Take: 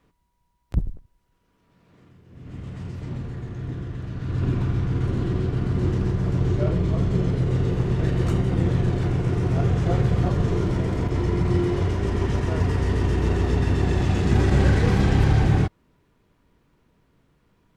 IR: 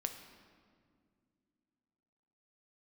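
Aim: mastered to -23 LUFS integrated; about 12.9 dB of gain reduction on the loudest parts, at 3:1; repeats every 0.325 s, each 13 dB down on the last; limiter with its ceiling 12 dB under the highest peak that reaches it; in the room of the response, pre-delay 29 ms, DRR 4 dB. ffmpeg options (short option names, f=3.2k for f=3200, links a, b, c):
-filter_complex "[0:a]acompressor=threshold=-32dB:ratio=3,alimiter=level_in=6dB:limit=-24dB:level=0:latency=1,volume=-6dB,aecho=1:1:325|650|975:0.224|0.0493|0.0108,asplit=2[a][b];[1:a]atrim=start_sample=2205,adelay=29[c];[b][c]afir=irnorm=-1:irlink=0,volume=-4dB[d];[a][d]amix=inputs=2:normalize=0,volume=15dB"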